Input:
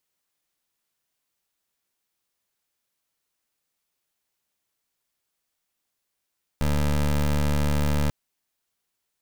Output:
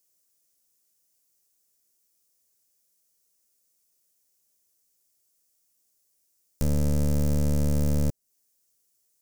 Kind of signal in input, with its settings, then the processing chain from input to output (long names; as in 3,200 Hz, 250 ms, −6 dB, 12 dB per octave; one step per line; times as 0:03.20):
pulse wave 73.5 Hz, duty 20% −22 dBFS 1.49 s
flat-topped bell 1,800 Hz −14 dB 2.7 octaves
one half of a high-frequency compander encoder only